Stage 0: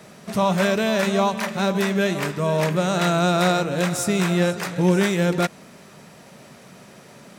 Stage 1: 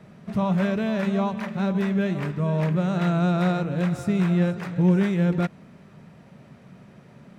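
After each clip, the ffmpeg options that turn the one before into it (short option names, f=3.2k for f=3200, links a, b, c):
-af "bass=f=250:g=11,treble=f=4k:g=-13,volume=-7.5dB"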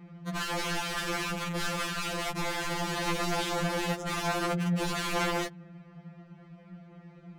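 -af "aeval=exprs='(mod(16.8*val(0)+1,2)-1)/16.8':c=same,adynamicsmooth=sensitivity=6:basefreq=4k,afftfilt=real='re*2.83*eq(mod(b,8),0)':imag='im*2.83*eq(mod(b,8),0)':win_size=2048:overlap=0.75"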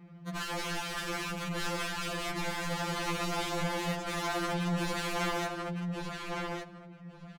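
-filter_complex "[0:a]asplit=2[a][b];[b]adelay=1160,lowpass=f=3.8k:p=1,volume=-3.5dB,asplit=2[c][d];[d]adelay=1160,lowpass=f=3.8k:p=1,volume=0.17,asplit=2[e][f];[f]adelay=1160,lowpass=f=3.8k:p=1,volume=0.17[g];[a][c][e][g]amix=inputs=4:normalize=0,volume=-3.5dB"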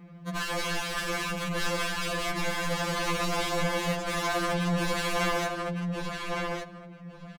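-af "aecho=1:1:4:0.41,volume=4dB"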